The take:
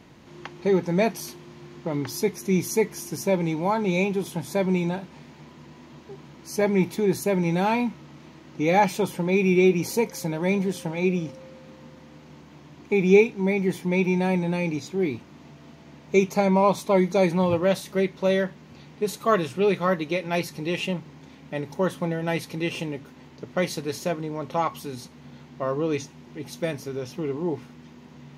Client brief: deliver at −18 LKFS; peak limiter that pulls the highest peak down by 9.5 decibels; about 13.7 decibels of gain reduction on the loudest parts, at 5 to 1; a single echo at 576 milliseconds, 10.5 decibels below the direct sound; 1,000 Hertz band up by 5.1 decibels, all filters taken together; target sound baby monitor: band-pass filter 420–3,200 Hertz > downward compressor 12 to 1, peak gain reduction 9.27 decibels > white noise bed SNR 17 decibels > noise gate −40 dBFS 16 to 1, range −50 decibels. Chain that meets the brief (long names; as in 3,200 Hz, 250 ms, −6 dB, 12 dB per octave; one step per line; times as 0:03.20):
parametric band 1,000 Hz +6.5 dB
downward compressor 5 to 1, threshold −26 dBFS
brickwall limiter −23 dBFS
band-pass filter 420–3,200 Hz
single-tap delay 576 ms −10.5 dB
downward compressor 12 to 1, threshold −36 dBFS
white noise bed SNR 17 dB
noise gate −40 dBFS 16 to 1, range −50 dB
level +24.5 dB